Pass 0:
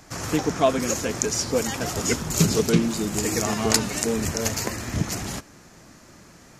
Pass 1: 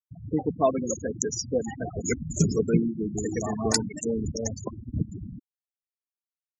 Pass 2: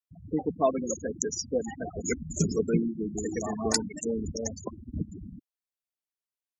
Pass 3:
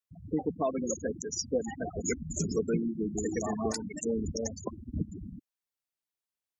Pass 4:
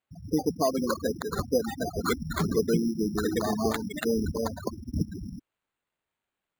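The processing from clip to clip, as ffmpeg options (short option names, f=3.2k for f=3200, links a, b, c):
-af "afftfilt=real='re*gte(hypot(re,im),0.126)':imag='im*gte(hypot(re,im),0.126)':win_size=1024:overlap=0.75,volume=-2.5dB"
-af "equalizer=f=120:t=o:w=0.43:g=-11.5,volume=-2dB"
-af "alimiter=limit=-19.5dB:level=0:latency=1:release=159"
-af "acrusher=samples=8:mix=1:aa=0.000001,volume=4.5dB"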